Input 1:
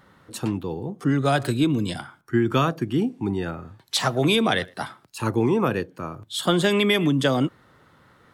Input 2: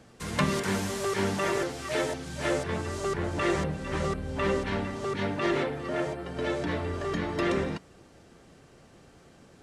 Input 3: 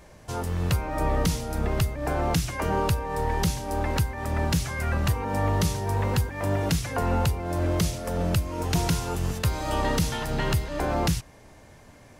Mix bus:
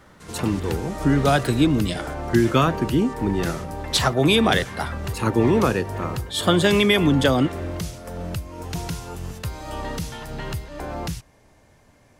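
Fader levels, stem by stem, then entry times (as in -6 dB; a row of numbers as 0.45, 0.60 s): +2.5, -8.0, -5.0 dB; 0.00, 0.00, 0.00 s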